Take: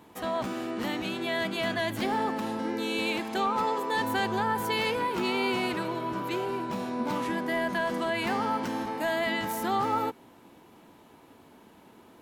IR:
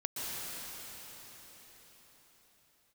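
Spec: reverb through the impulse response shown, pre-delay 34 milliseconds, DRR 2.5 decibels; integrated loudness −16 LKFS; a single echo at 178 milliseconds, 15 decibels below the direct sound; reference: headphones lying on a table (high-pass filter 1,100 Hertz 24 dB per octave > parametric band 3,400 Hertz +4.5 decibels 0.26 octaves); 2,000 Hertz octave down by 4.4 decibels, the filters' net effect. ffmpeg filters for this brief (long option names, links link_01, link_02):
-filter_complex "[0:a]equalizer=frequency=2000:width_type=o:gain=-5.5,aecho=1:1:178:0.178,asplit=2[link_01][link_02];[1:a]atrim=start_sample=2205,adelay=34[link_03];[link_02][link_03]afir=irnorm=-1:irlink=0,volume=-7.5dB[link_04];[link_01][link_04]amix=inputs=2:normalize=0,highpass=frequency=1100:width=0.5412,highpass=frequency=1100:width=1.3066,equalizer=frequency=3400:width_type=o:width=0.26:gain=4.5,volume=18dB"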